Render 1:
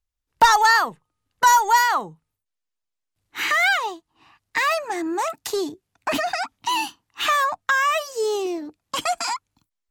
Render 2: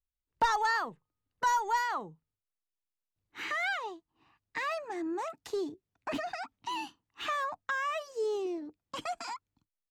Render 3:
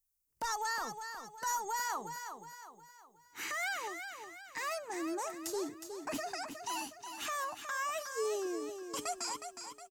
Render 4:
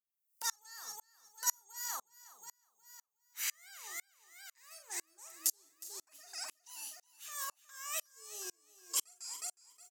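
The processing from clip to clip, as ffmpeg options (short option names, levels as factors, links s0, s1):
-af "firequalizer=gain_entry='entry(460,0);entry(710,-4);entry(15000,-18)':delay=0.05:min_phase=1,volume=0.376"
-filter_complex "[0:a]alimiter=level_in=1.33:limit=0.0631:level=0:latency=1:release=154,volume=0.75,aexciter=amount=6.5:drive=2.8:freq=5200,asplit=2[s0][s1];[s1]aecho=0:1:364|728|1092|1456|1820:0.398|0.175|0.0771|0.0339|0.0149[s2];[s0][s2]amix=inputs=2:normalize=0,volume=0.708"
-filter_complex "[0:a]aderivative,asplit=2[s0][s1];[s1]adelay=43,volume=0.355[s2];[s0][s2]amix=inputs=2:normalize=0,aeval=exprs='val(0)*pow(10,-37*if(lt(mod(-2*n/s,1),2*abs(-2)/1000),1-mod(-2*n/s,1)/(2*abs(-2)/1000),(mod(-2*n/s,1)-2*abs(-2)/1000)/(1-2*abs(-2)/1000))/20)':c=same,volume=4.22"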